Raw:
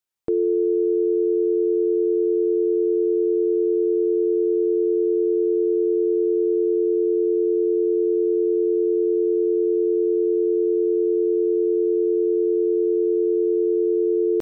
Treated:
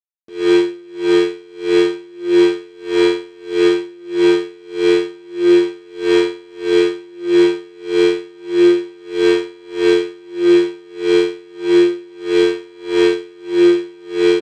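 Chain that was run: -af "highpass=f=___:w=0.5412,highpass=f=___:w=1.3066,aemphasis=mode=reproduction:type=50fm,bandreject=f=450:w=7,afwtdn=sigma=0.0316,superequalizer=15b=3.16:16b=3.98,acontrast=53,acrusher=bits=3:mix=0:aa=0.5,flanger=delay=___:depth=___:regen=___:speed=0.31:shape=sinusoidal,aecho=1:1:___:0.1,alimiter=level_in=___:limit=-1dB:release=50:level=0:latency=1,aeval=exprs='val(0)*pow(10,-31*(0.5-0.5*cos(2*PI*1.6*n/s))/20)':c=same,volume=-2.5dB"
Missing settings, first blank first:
65, 65, 4.2, 2.6, 40, 119, 15.5dB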